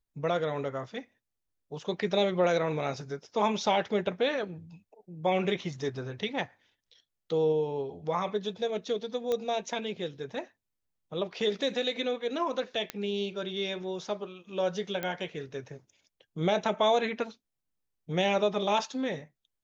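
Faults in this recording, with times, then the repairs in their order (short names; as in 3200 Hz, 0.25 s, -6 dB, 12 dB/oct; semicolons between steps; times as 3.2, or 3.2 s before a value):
9.32 pop -18 dBFS
12.9 pop -16 dBFS
15.03 pop -18 dBFS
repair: de-click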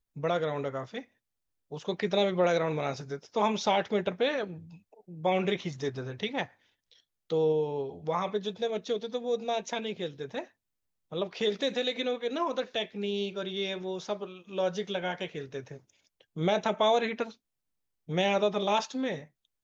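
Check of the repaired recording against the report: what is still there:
15.03 pop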